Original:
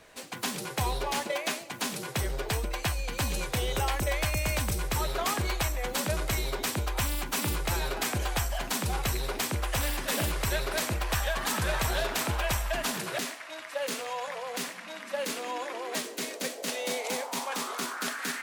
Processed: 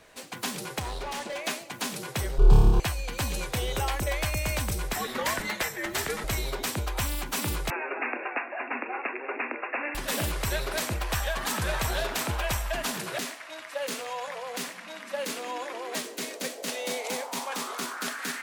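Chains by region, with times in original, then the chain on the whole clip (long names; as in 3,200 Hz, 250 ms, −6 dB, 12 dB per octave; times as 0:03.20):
0:00.79–0:01.44: low-pass filter 9,300 Hz + hard clipping −31.5 dBFS
0:02.38–0:02.80: spectral tilt −4 dB per octave + phaser with its sweep stopped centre 390 Hz, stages 8 + flutter between parallel walls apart 4.8 metres, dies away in 1.2 s
0:04.93–0:06.24: high-pass filter 260 Hz + parametric band 2,000 Hz +8.5 dB 0.39 octaves + frequency shifter −160 Hz
0:07.70–0:09.95: linear-phase brick-wall band-pass 230–2,800 Hz + parametric band 2,200 Hz +5 dB 1.3 octaves + single-tap delay 343 ms −13 dB
whole clip: no processing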